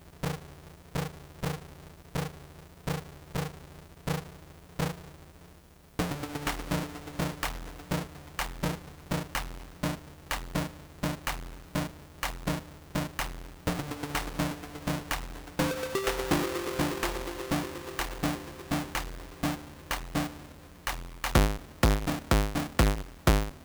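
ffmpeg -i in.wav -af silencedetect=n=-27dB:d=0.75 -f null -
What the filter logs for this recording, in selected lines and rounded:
silence_start: 4.91
silence_end: 5.99 | silence_duration: 1.08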